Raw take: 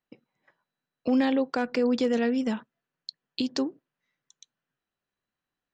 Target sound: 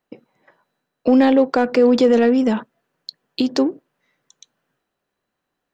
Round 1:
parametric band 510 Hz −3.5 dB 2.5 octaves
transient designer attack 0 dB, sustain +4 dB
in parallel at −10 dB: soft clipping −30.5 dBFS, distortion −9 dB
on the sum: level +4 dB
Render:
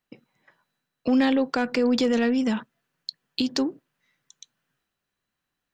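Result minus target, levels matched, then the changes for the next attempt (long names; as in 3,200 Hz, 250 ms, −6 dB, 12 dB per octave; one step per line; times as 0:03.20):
500 Hz band −3.0 dB
change: parametric band 510 Hz +7.5 dB 2.5 octaves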